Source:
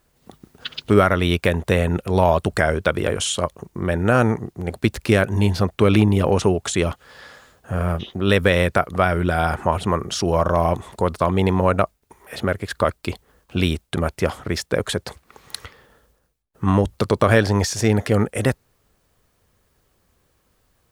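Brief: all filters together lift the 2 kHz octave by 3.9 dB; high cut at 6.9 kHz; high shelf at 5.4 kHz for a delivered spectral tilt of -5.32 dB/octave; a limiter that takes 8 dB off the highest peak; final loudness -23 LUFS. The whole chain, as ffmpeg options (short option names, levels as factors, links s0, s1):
-af "lowpass=6900,equalizer=f=2000:t=o:g=4.5,highshelf=f=5400:g=4.5,volume=0.891,alimiter=limit=0.398:level=0:latency=1"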